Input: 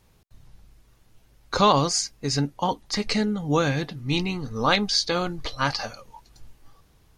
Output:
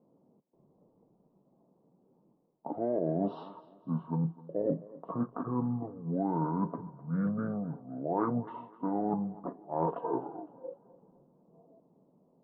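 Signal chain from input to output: elliptic band-pass 280–1800 Hz, stop band 40 dB; low-pass opened by the level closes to 990 Hz, open at -21 dBFS; reverse; compressor 8:1, threshold -32 dBFS, peak gain reduction 17.5 dB; reverse; thinning echo 0.147 s, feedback 42%, high-pass 360 Hz, level -18 dB; speed mistake 78 rpm record played at 45 rpm; gain +4 dB

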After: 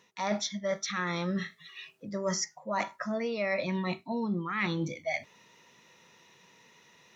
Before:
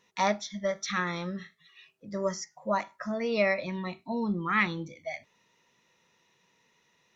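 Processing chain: HPF 78 Hz; reverse; compressor 10:1, threshold -37 dBFS, peak gain reduction 17 dB; reverse; gain +9 dB

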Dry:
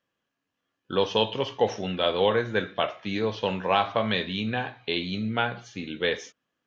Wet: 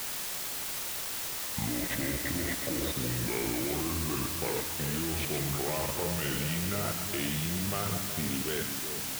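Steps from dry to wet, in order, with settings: speed glide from 54% -> 91%; low shelf 290 Hz +7.5 dB; compressor 6:1, threshold -24 dBFS, peak gain reduction 11.5 dB; sample leveller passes 1; level quantiser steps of 17 dB; split-band echo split 700 Hz, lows 0.373 s, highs 0.132 s, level -8 dB; requantised 6-bit, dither triangular

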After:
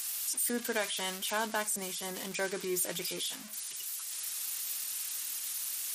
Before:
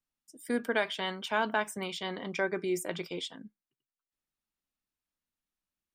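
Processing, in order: switching spikes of -22.5 dBFS; 1.62–2.15 dynamic EQ 3200 Hz, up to -7 dB, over -48 dBFS, Q 1; gain -3.5 dB; MP3 56 kbps 44100 Hz

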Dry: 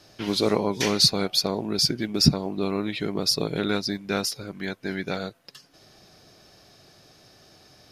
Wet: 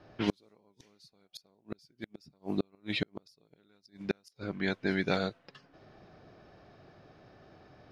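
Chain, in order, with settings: low-pass opened by the level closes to 1600 Hz, open at -21.5 dBFS; flipped gate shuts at -16 dBFS, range -41 dB

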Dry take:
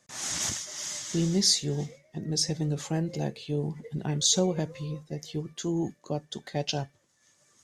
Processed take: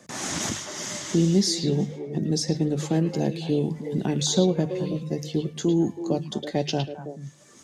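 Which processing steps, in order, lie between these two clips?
bell 270 Hz +9 dB 2.4 oct; notches 50/100/150 Hz; on a send: delay with a stepping band-pass 0.108 s, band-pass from 3000 Hz, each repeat -1.4 oct, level -4 dB; on the sum: three-band squash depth 40%

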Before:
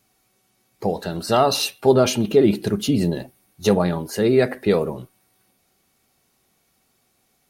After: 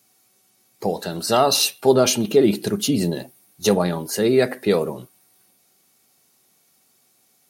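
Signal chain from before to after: HPF 120 Hz 12 dB/oct; tone controls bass -1 dB, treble +7 dB

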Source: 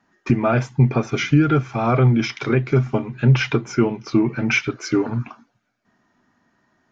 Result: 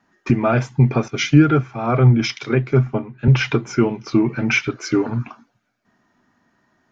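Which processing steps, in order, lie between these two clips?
1.08–3.28 three-band expander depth 100%; gain +1 dB

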